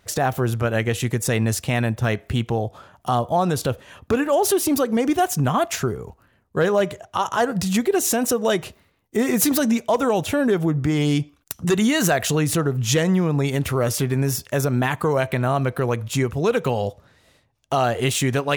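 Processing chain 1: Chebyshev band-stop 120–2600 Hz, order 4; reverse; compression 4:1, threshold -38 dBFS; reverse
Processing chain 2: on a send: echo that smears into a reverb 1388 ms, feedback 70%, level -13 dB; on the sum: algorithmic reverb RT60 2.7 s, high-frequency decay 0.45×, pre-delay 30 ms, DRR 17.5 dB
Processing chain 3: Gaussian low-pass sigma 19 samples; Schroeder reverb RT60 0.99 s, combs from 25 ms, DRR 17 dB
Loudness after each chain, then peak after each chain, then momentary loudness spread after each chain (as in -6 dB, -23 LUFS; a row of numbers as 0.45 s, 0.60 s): -39.5 LUFS, -21.0 LUFS, -26.0 LUFS; -17.5 dBFS, -7.5 dBFS, -13.0 dBFS; 7 LU, 8 LU, 8 LU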